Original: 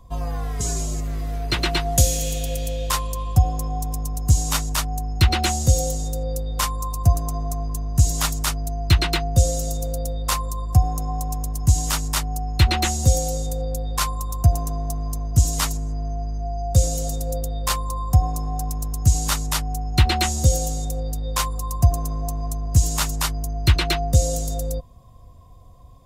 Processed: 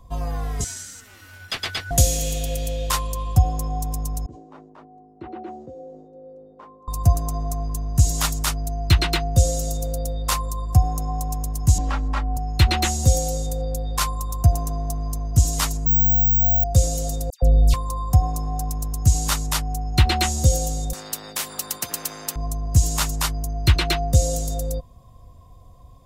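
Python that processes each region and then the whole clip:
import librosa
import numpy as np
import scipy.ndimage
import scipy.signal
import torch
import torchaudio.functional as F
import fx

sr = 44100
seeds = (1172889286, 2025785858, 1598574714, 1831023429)

y = fx.chain(x, sr, fx.cheby2_highpass(hz=340.0, order=4, stop_db=40),
    fx.ring_mod(carrier_hz=790.0), at=(0.64, 1.91))
y = fx.chain(y, sr, fx.ladder_bandpass(hz=400.0, resonance_pct=45),
    fx.sustainer(db_per_s=51.0), at=(4.26, 6.88))
y = fx.chain(y, sr, fx.lowpass(hz=1700.0, slope=12),
    fx.comb(ms=3.7, depth=0.63),
    fx.band_squash(depth_pct=40), at=(11.78, 12.37))
y = fx.chain(y, sr, fx.low_shelf(hz=270.0, db=6.0),
    fx.resample_bad(factor=2, down='none', up='zero_stuff'), at=(15.86, 16.64))
y = fx.chain(y, sr, fx.tilt_eq(slope=-3.0),
    fx.dispersion(late='lows', ms=123.0, hz=1900.0), at=(17.3, 17.74))
y = fx.chain(y, sr, fx.highpass(hz=200.0, slope=24),
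    fx.spectral_comp(ratio=4.0), at=(20.93, 22.36))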